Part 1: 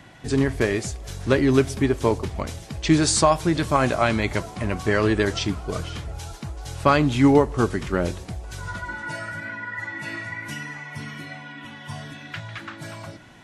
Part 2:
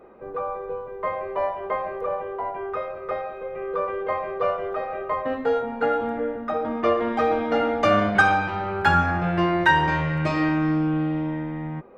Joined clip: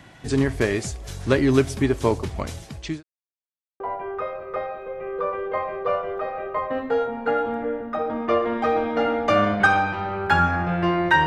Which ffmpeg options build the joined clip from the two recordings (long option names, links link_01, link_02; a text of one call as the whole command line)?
ffmpeg -i cue0.wav -i cue1.wav -filter_complex "[0:a]apad=whole_dur=11.26,atrim=end=11.26,asplit=2[link_01][link_02];[link_01]atrim=end=3.03,asetpts=PTS-STARTPTS,afade=type=out:start_time=2.6:duration=0.43[link_03];[link_02]atrim=start=3.03:end=3.8,asetpts=PTS-STARTPTS,volume=0[link_04];[1:a]atrim=start=2.35:end=9.81,asetpts=PTS-STARTPTS,afade=type=in:duration=0.004:curve=hsin[link_05];[link_03][link_04][link_05]concat=n=3:v=0:a=1" out.wav